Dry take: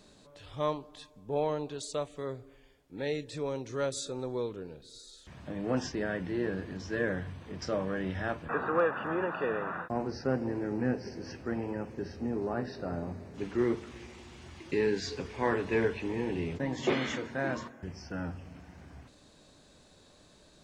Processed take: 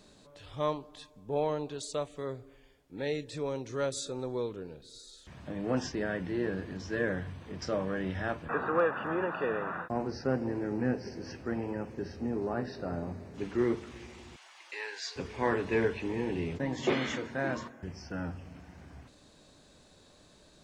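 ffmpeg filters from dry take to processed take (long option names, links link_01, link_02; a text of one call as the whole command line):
ffmpeg -i in.wav -filter_complex "[0:a]asettb=1/sr,asplit=3[link_01][link_02][link_03];[link_01]atrim=end=14.364[link_04];[link_02]atrim=start=14.36:end=15.16,asetpts=PTS-STARTPTS,afade=type=in:duration=0.004:curve=qsin,afade=type=out:start_time=0.796:duration=0.004:curve=qsin,highpass=frequency=720:width=0.5412,highpass=frequency=720:width=1.3066[link_05];[link_03]atrim=start=15.156[link_06];[link_04][link_05]acrossfade=duration=0.004:curve1=hsin:curve2=qsin[link_07];[link_07][link_06]acrossfade=duration=0.004:curve1=qsin:curve2=hsin" out.wav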